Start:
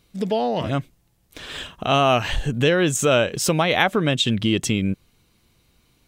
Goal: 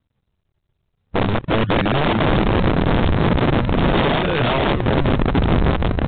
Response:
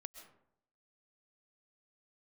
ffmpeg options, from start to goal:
-filter_complex "[0:a]areverse,afwtdn=0.0501,asplit=2[a][b];[b]aecho=0:1:550|962.5|1272|1504|1678:0.631|0.398|0.251|0.158|0.1[c];[a][c]amix=inputs=2:normalize=0,aeval=exprs='0.316*(abs(mod(val(0)/0.316+3,4)-2)-1)':c=same,highpass=91,highshelf=f=2.9k:g=-5,aresample=8000,acrusher=samples=18:mix=1:aa=0.000001:lfo=1:lforange=28.8:lforate=0.4,aresample=44100,acompressor=threshold=-20dB:ratio=4,lowshelf=f=130:g=8.5,aeval=exprs='(mod(7.08*val(0)+1,2)-1)/7.08':c=same,volume=6.5dB" -ar 8000 -c:a adpcm_g726 -b:a 40k

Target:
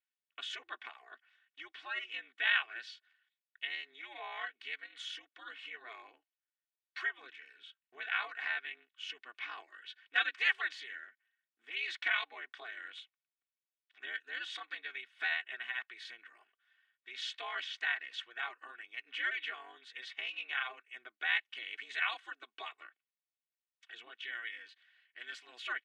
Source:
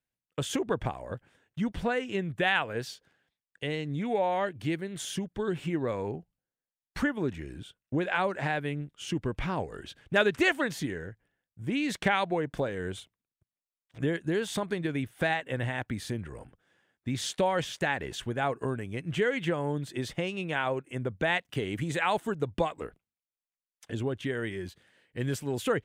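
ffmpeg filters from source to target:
-af "aeval=exprs='val(0)*sin(2*PI*120*n/s)':c=same,asuperpass=centerf=2400:order=4:qfactor=0.99,aecho=1:1:2.7:0.73"

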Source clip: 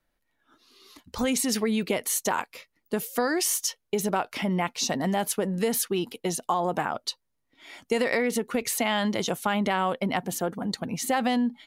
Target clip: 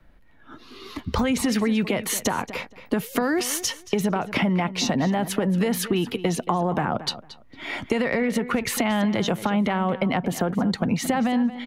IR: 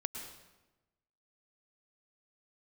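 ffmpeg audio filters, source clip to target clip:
-filter_complex "[0:a]bass=f=250:g=9,treble=f=4k:g=-14,acrossover=split=210|670[a][b][c];[a]acompressor=threshold=-37dB:ratio=4[d];[b]acompressor=threshold=-33dB:ratio=4[e];[c]acompressor=threshold=-34dB:ratio=4[f];[d][e][f]amix=inputs=3:normalize=0,asplit=2[g][h];[h]alimiter=level_in=0.5dB:limit=-24dB:level=0:latency=1,volume=-0.5dB,volume=2dB[i];[g][i]amix=inputs=2:normalize=0,acompressor=threshold=-31dB:ratio=3,asplit=2[j][k];[k]adelay=227,lowpass=f=4.4k:p=1,volume=-14dB,asplit=2[l][m];[m]adelay=227,lowpass=f=4.4k:p=1,volume=0.19[n];[j][l][n]amix=inputs=3:normalize=0,volume=9dB"

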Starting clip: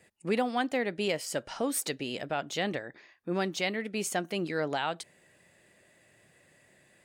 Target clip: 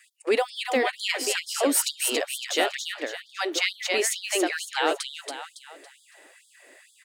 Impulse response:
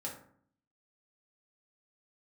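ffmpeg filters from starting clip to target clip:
-filter_complex "[0:a]acrossover=split=340|3000[a][b][c];[b]acompressor=threshold=-30dB:ratio=6[d];[a][d][c]amix=inputs=3:normalize=0,aecho=1:1:279|558|837|1116|1395:0.631|0.24|0.0911|0.0346|0.0132,afftfilt=real='re*gte(b*sr/1024,230*pow(3200/230,0.5+0.5*sin(2*PI*2.2*pts/sr)))':imag='im*gte(b*sr/1024,230*pow(3200/230,0.5+0.5*sin(2*PI*2.2*pts/sr)))':win_size=1024:overlap=0.75,volume=9dB"

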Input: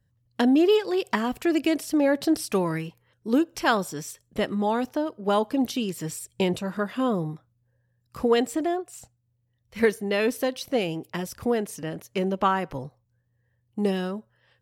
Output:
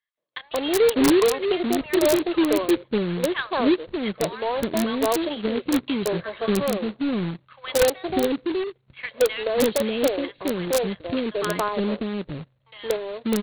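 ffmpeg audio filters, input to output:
-filter_complex "[0:a]equalizer=f=270:w=0.62:g=10,aecho=1:1:2:0.37,acrossover=split=380|1200[a][b][c];[b]adelay=190[d];[a]adelay=650[e];[e][d][c]amix=inputs=3:normalize=0,aresample=8000,acrusher=bits=2:mode=log:mix=0:aa=0.000001,aresample=44100,asetrate=48000,aresample=44100,aeval=exprs='(mod(2.99*val(0)+1,2)-1)/2.99':c=same,volume=-2.5dB"

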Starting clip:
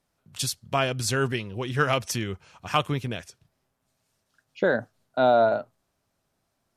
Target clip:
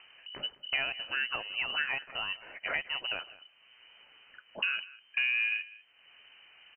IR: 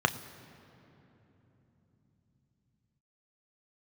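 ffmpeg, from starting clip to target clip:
-filter_complex "[0:a]asettb=1/sr,asplit=3[a][b][c];[a]atrim=end=0.894[d];[b]atrim=start=0.89:end=3.19,asetpts=PTS-STARTPTS,afade=t=in:d=0.004:c=qsin,afade=t=out:st=2.296:d=0.004:c=qsin,highpass=f=360:p=1[e];[c]atrim=start=3.186[f];[d][e]acrossfade=d=0.004:c1=hsin:c2=qsin[g];[g][f]acrossfade=d=0.004:c1=qsin:c2=hsin,acompressor=threshold=-36dB:ratio=5,asoftclip=type=tanh:threshold=-26.5dB,acompressor=mode=upward:threshold=-51dB:ratio=2.5,lowpass=f=2.6k:t=q:w=0.5098,lowpass=f=2.6k:t=q:w=0.6013,lowpass=f=2.6k:t=q:w=0.9,lowpass=f=2.6k:t=q:w=2.563,afreqshift=-3100,aecho=1:1:198:0.106,volume=7dB"

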